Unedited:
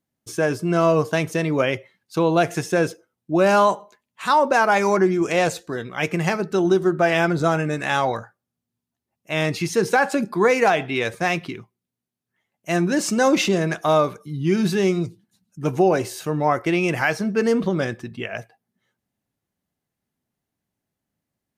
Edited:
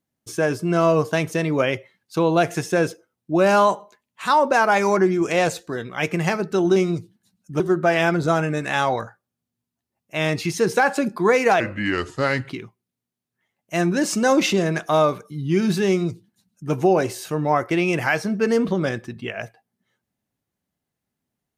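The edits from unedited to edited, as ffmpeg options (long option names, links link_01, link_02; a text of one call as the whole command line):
ffmpeg -i in.wav -filter_complex "[0:a]asplit=5[link_01][link_02][link_03][link_04][link_05];[link_01]atrim=end=6.762[link_06];[link_02]atrim=start=14.838:end=15.682[link_07];[link_03]atrim=start=6.758:end=10.764[link_08];[link_04]atrim=start=10.76:end=11.45,asetpts=PTS-STARTPTS,asetrate=33957,aresample=44100,atrim=end_sample=39518,asetpts=PTS-STARTPTS[link_09];[link_05]atrim=start=11.446[link_10];[link_06][link_07]acrossfade=duration=0.004:curve1=hsin:curve2=hsin[link_11];[link_11][link_08]acrossfade=duration=0.004:curve1=hsin:curve2=hsin[link_12];[link_12][link_09]acrossfade=duration=0.004:curve1=hsin:curve2=hsin[link_13];[link_13][link_10]acrossfade=duration=0.004:curve1=hsin:curve2=hsin" out.wav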